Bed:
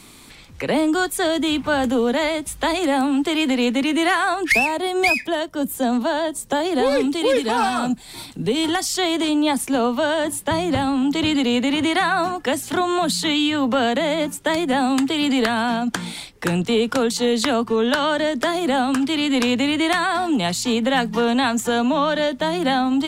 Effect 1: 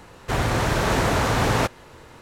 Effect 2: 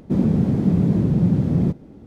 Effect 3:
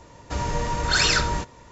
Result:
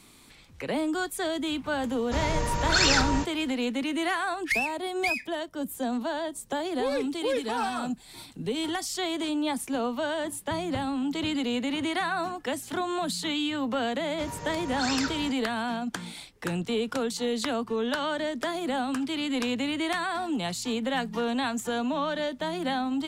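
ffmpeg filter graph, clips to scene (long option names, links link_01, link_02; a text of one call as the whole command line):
ffmpeg -i bed.wav -i cue0.wav -i cue1.wav -i cue2.wav -filter_complex "[3:a]asplit=2[link_01][link_02];[0:a]volume=-9.5dB[link_03];[link_02]highpass=76[link_04];[link_01]atrim=end=1.71,asetpts=PTS-STARTPTS,volume=-2dB,afade=type=in:duration=0.004:curve=hsin,afade=type=out:start_time=1.706:duration=0.004:curve=hsin,adelay=1810[link_05];[link_04]atrim=end=1.71,asetpts=PTS-STARTPTS,volume=-11dB,afade=type=in:duration=0.004:curve=hsin,afade=type=out:start_time=1.706:duration=0.004:curve=hsin,adelay=13880[link_06];[link_03][link_05][link_06]amix=inputs=3:normalize=0" out.wav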